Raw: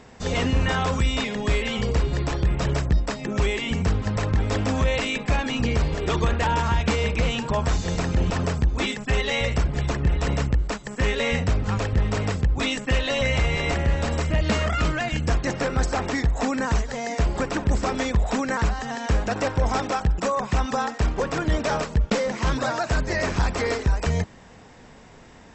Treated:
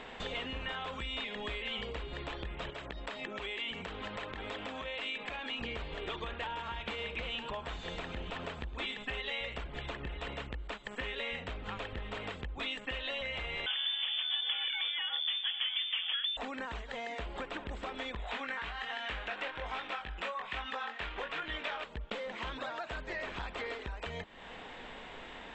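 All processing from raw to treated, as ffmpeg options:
-filter_complex "[0:a]asettb=1/sr,asplit=3[a][b][c];[a]atrim=end=2.704[d];[b]atrim=start=2.7:end=5.61,asetpts=PTS-STARTPTS,afade=t=in:d=0.004:c=qsin,afade=t=out:st=2.906:d=0.004:c=qsin,lowshelf=f=130:g=-10.5,acompressor=threshold=-29dB:ratio=4:attack=3.2:release=140:knee=1:detection=peak[e];[c]atrim=start=5.606[f];[d][e]acrossfade=d=0.004:c1=hsin:c2=qsin[g];[g][f]acrossfade=d=0.004:c1=qsin:c2=hsin,asettb=1/sr,asplit=3[h][i][j];[h]atrim=end=6.514[k];[i]atrim=start=6.51:end=9.1,asetpts=PTS-STARTPTS,afade=t=in:d=0.004:c=qsin,afade=t=out:st=2.586:d=0.004:c=qsin,asoftclip=type=hard:threshold=-14.5dB,aecho=1:1:111:0.158,atrim=end_sample=114219[l];[j]atrim=start=9.096[m];[k][l]acrossfade=d=0.004:c1=hsin:c2=qsin[n];[n][m]acrossfade=d=0.004:c1=qsin:c2=hsin,asettb=1/sr,asplit=3[o][p][q];[o]atrim=end=13.664[r];[p]atrim=start=13.66:end=16.37,asetpts=PTS-STARTPTS,afade=t=in:d=0.004:c=qsin,afade=t=out:st=2.706:d=0.004:c=qsin,highpass=f=95:p=1,lowpass=f=3.1k:t=q:w=0.5098,lowpass=f=3.1k:t=q:w=0.6013,lowpass=f=3.1k:t=q:w=0.9,lowpass=f=3.1k:t=q:w=2.563,afreqshift=-3600[s];[q]atrim=start=16.366[t];[r][s]acrossfade=d=0.004:c1=hsin:c2=qsin[u];[u][t]acrossfade=d=0.004:c1=qsin:c2=hsin,asettb=1/sr,asplit=3[v][w][x];[v]atrim=end=18.174[y];[w]atrim=start=18.17:end=21.84,asetpts=PTS-STARTPTS,afade=t=in:d=0.004:c=qsin,afade=t=out:st=3.666:d=0.004:c=qsin,equalizer=f=2.3k:t=o:w=2.6:g=11.5,flanger=delay=18.5:depth=5:speed=1.2[z];[x]atrim=start=21.836[aa];[y][z]acrossfade=d=0.004:c1=hsin:c2=qsin[ab];[ab][aa]acrossfade=d=0.004:c1=qsin:c2=hsin,equalizer=f=110:w=0.58:g=-15,acompressor=threshold=-42dB:ratio=6,highshelf=f=4.3k:t=q:w=3:g=-8.5,volume=3dB"

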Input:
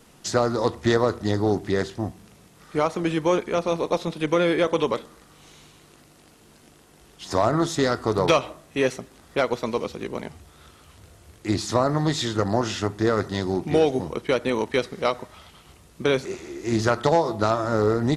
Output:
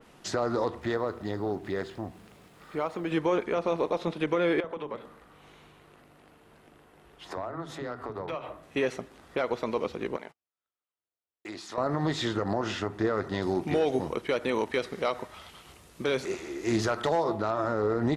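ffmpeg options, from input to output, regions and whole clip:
-filter_complex "[0:a]asettb=1/sr,asplit=3[a][b][c];[a]atrim=end=0.814[d];[b]atrim=start=0.81:end=3.12,asetpts=PTS-STARTPTS,afade=t=in:d=0.004:c=qsin,afade=t=out:st=2.306:d=0.004:c=qsin,bandreject=f=5.9k:w=10,acompressor=threshold=-38dB:ratio=1.5:attack=3.2:release=140:knee=1:detection=peak,acrusher=bits=8:mix=0:aa=0.5[e];[c]atrim=start=3.116[f];[d][e]acrossfade=d=0.004:c1=hsin:c2=qsin[g];[g][f]acrossfade=d=0.004:c1=qsin:c2=hsin,asettb=1/sr,asplit=3[h][i][j];[h]atrim=end=4.604[k];[i]atrim=start=4.6:end=8.63,asetpts=PTS-STARTPTS,afade=t=in:d=0.004:c=qsin,afade=t=out:st=4.026:d=0.004:c=qsin,equalizer=f=6k:w=0.74:g=-9,acompressor=threshold=-30dB:ratio=6:attack=3.2:release=140:knee=1:detection=peak,acrossover=split=290[l][m];[l]adelay=40[n];[n][m]amix=inputs=2:normalize=0,atrim=end_sample=177723[o];[j]atrim=start=8.626[p];[k][o]acrossfade=d=0.004:c1=hsin:c2=qsin[q];[q][p]acrossfade=d=0.004:c1=qsin:c2=hsin,asettb=1/sr,asplit=3[r][s][t];[r]atrim=end=10.164[u];[s]atrim=start=10.16:end=11.78,asetpts=PTS-STARTPTS,afade=t=in:d=0.004:c=qsin,afade=t=out:st=1.616:d=0.004:c=qsin,highpass=f=590:p=1,agate=range=-44dB:threshold=-47dB:ratio=16:release=100:detection=peak,acompressor=threshold=-36dB:ratio=3:attack=3.2:release=140:knee=1:detection=peak[v];[t]atrim=start=11.776[w];[u][v]acrossfade=d=0.004:c1=hsin:c2=qsin[x];[x][w]acrossfade=d=0.004:c1=qsin:c2=hsin,asettb=1/sr,asplit=3[y][z][aa];[y]atrim=end=13.424[ab];[z]atrim=start=13.42:end=17.24,asetpts=PTS-STARTPTS,afade=t=in:d=0.004:c=qsin,afade=t=out:st=3.816:d=0.004:c=qsin,highshelf=f=4.2k:g=10,asoftclip=type=hard:threshold=-10.5dB[ac];[aa]atrim=start=17.236[ad];[ab][ac]acrossfade=d=0.004:c1=hsin:c2=qsin[ae];[ae][ad]acrossfade=d=0.004:c1=qsin:c2=hsin,bass=f=250:g=-5,treble=f=4k:g=-9,alimiter=limit=-17dB:level=0:latency=1:release=81,adynamicequalizer=threshold=0.00447:dfrequency=3400:dqfactor=0.7:tfrequency=3400:tqfactor=0.7:attack=5:release=100:ratio=0.375:range=1.5:mode=cutabove:tftype=highshelf"

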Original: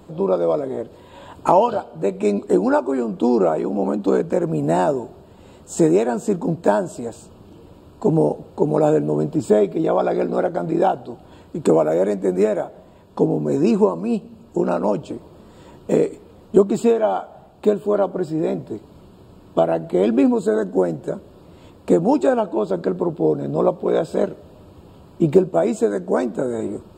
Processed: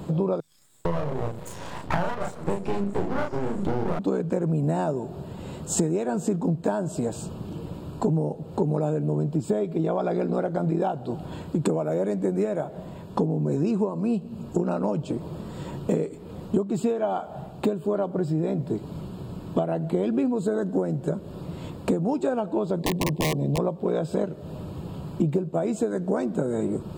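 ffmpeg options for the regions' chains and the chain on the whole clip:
-filter_complex "[0:a]asettb=1/sr,asplit=3[a][b][c];[a]atrim=end=0.404[d];[b]atrim=start=0.4:end=3.99,asetpts=PTS-STARTPTS,afade=t=in:d=0.004:c=qsin,afade=t=out:st=3.586:d=0.004:c=qsin,acrossover=split=210|5000[e][f][g];[f]adelay=450[h];[e]adelay=510[i];[i][h][g]amix=inputs=3:normalize=0,atrim=end_sample=158319,aeval=exprs='max(val(0),0)':c=same,asplit=2[j][k];[k]adelay=35,volume=-3dB[l];[j][l]amix=inputs=2:normalize=0,atrim=end_sample=158319[m];[c]atrim=start=3.986[n];[d][m]acrossfade=d=0.004:c1=hsin:c2=qsin[o];[o][n]acrossfade=d=0.004:c1=qsin:c2=hsin,asettb=1/sr,asplit=3[p][q][r];[p]atrim=end=22.794[s];[q]atrim=start=22.79:end=23.58,asetpts=PTS-STARTPTS,afade=t=in:d=0.004:c=qsin,afade=t=out:st=0.786:d=0.004:c=qsin,aeval=exprs='(mod(4.47*val(0)+1,2)-1)/4.47':c=same,asuperstop=centerf=1400:order=12:qfactor=2.2[t];[r]atrim=start=23.576[u];[s][t]acrossfade=d=0.004:c1=hsin:c2=qsin[v];[v][u]acrossfade=d=0.004:c1=qsin:c2=hsin,equalizer=f=150:t=o:w=0.77:g=10,acompressor=threshold=-28dB:ratio=6,volume=5.5dB"

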